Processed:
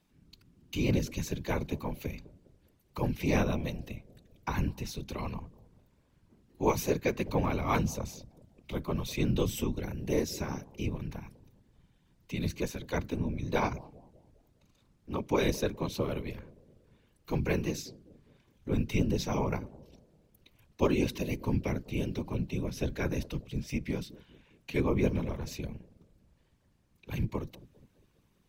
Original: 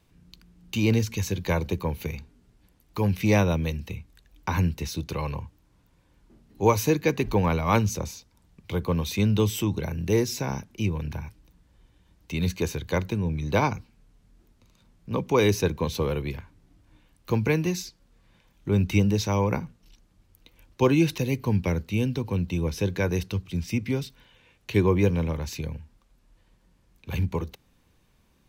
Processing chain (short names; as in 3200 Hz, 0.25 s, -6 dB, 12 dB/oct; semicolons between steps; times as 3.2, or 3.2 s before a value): analogue delay 0.202 s, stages 1024, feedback 46%, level -18.5 dB; whisperiser; gain -6.5 dB